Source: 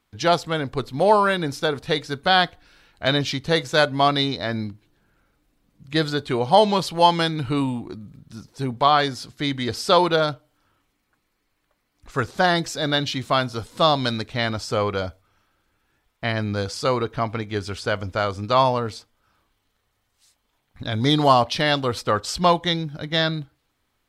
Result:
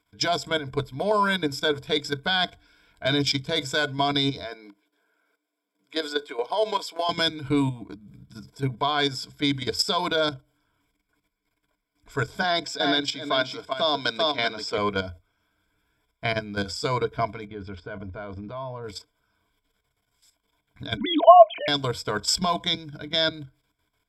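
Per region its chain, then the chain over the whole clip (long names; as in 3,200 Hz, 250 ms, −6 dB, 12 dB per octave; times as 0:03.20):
0:04.43–0:07.09: high-shelf EQ 3,000 Hz −2 dB + downward compressor 10 to 1, threshold −17 dBFS + high-pass filter 350 Hz 24 dB per octave
0:12.42–0:14.78: three-way crossover with the lows and the highs turned down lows −19 dB, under 190 Hz, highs −13 dB, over 5,900 Hz + single-tap delay 385 ms −6.5 dB
0:17.47–0:18.84: downward compressor 3 to 1, threshold −22 dBFS + head-to-tape spacing loss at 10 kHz 32 dB
0:20.97–0:21.68: three sine waves on the formant tracks + parametric band 680 Hz +10.5 dB 0.21 octaves
whole clip: dynamic equaliser 6,300 Hz, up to +8 dB, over −41 dBFS, Q 0.95; output level in coarse steps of 12 dB; EQ curve with evenly spaced ripples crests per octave 1.7, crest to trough 14 dB; level −1.5 dB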